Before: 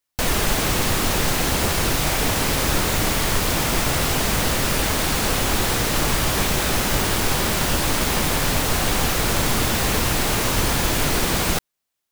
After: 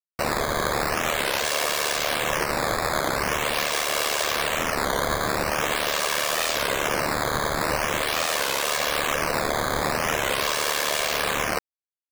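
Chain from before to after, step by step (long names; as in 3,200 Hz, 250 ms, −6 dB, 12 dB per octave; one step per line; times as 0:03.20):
high-pass filter 470 Hz 24 dB per octave
parametric band 14,000 Hz −10.5 dB 0.75 octaves
comb filter 1.8 ms, depth 66%
in parallel at 0 dB: brickwall limiter −16.5 dBFS, peak gain reduction 6.5 dB
on the sum: bit reduction 4 bits
ring modulation 37 Hz
sample-and-hold swept by an LFO 9×, swing 160% 0.44 Hz
wow of a warped record 33 1/3 rpm, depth 160 cents
level −4 dB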